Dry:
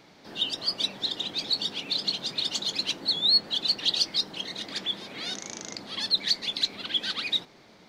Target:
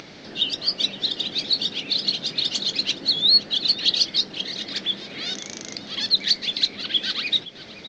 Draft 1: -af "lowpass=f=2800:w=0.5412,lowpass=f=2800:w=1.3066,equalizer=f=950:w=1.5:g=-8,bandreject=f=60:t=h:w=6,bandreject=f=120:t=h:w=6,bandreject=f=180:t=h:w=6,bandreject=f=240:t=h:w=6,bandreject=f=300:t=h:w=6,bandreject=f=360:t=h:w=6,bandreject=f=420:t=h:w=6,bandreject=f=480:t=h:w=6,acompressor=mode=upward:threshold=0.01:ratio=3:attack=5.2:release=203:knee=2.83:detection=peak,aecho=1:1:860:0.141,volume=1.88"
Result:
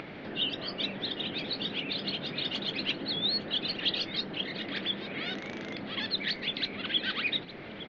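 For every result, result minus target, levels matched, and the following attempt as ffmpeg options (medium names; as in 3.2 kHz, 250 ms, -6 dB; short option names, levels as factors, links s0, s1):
8 kHz band -16.0 dB; echo 342 ms late
-af "lowpass=f=6300:w=0.5412,lowpass=f=6300:w=1.3066,equalizer=f=950:w=1.5:g=-8,bandreject=f=60:t=h:w=6,bandreject=f=120:t=h:w=6,bandreject=f=180:t=h:w=6,bandreject=f=240:t=h:w=6,bandreject=f=300:t=h:w=6,bandreject=f=360:t=h:w=6,bandreject=f=420:t=h:w=6,bandreject=f=480:t=h:w=6,acompressor=mode=upward:threshold=0.01:ratio=3:attack=5.2:release=203:knee=2.83:detection=peak,aecho=1:1:860:0.141,volume=1.88"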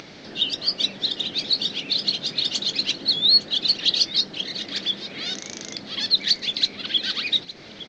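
echo 342 ms late
-af "lowpass=f=6300:w=0.5412,lowpass=f=6300:w=1.3066,equalizer=f=950:w=1.5:g=-8,bandreject=f=60:t=h:w=6,bandreject=f=120:t=h:w=6,bandreject=f=180:t=h:w=6,bandreject=f=240:t=h:w=6,bandreject=f=300:t=h:w=6,bandreject=f=360:t=h:w=6,bandreject=f=420:t=h:w=6,bandreject=f=480:t=h:w=6,acompressor=mode=upward:threshold=0.01:ratio=3:attack=5.2:release=203:knee=2.83:detection=peak,aecho=1:1:518:0.141,volume=1.88"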